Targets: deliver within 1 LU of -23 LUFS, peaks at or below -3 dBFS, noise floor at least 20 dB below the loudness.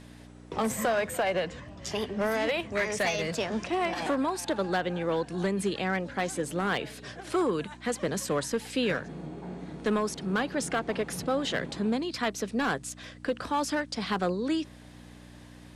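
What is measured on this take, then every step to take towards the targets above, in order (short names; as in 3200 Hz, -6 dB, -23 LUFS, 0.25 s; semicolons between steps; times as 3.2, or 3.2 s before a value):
clipped 0.7%; flat tops at -20.5 dBFS; hum 60 Hz; harmonics up to 300 Hz; hum level -47 dBFS; loudness -30.5 LUFS; peak -20.5 dBFS; loudness target -23.0 LUFS
-> clip repair -20.5 dBFS; de-hum 60 Hz, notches 5; gain +7.5 dB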